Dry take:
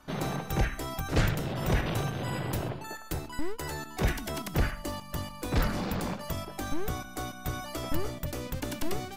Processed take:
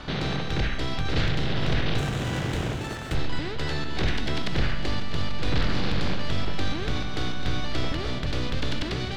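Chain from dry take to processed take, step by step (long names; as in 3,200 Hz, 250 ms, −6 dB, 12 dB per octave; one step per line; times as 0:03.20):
compressor on every frequency bin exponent 0.6
dynamic equaliser 800 Hz, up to −4 dB, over −43 dBFS, Q 0.71
in parallel at +1.5 dB: brickwall limiter −23 dBFS, peak gain reduction 11 dB
on the sum: low-pass with resonance 3,900 Hz, resonance Q 2.2
on a send: feedback echo with a long and a short gap by turns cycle 1,399 ms, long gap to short 1.5 to 1, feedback 55%, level −13 dB
on the sum: comb and all-pass reverb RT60 4.4 s, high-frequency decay 0.75×, pre-delay 15 ms, DRR 13 dB
0:01.98–0:03.15: windowed peak hold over 5 samples
level −5 dB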